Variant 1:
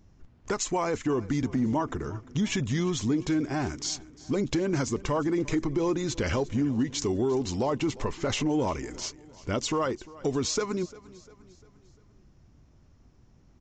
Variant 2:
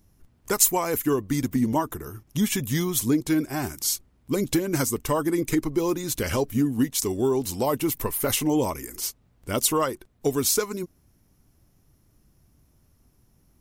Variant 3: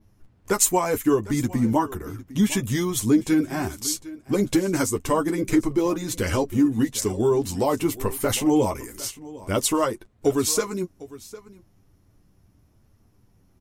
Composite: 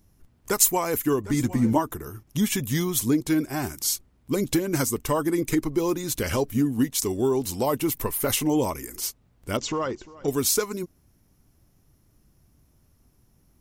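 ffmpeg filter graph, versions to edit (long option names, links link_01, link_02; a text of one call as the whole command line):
ffmpeg -i take0.wav -i take1.wav -i take2.wav -filter_complex "[1:a]asplit=3[link_01][link_02][link_03];[link_01]atrim=end=1.242[link_04];[2:a]atrim=start=1.238:end=1.782[link_05];[link_02]atrim=start=1.778:end=9.572[link_06];[0:a]atrim=start=9.568:end=10.282[link_07];[link_03]atrim=start=10.278[link_08];[link_04][link_05]acrossfade=duration=0.004:curve1=hsin:curve2=hsin[link_09];[link_09][link_06]acrossfade=duration=0.004:curve1=hsin:curve2=hsin[link_10];[link_10][link_07]acrossfade=duration=0.004:curve1=hsin:curve2=hsin[link_11];[link_11][link_08]acrossfade=duration=0.004:curve1=hsin:curve2=hsin" out.wav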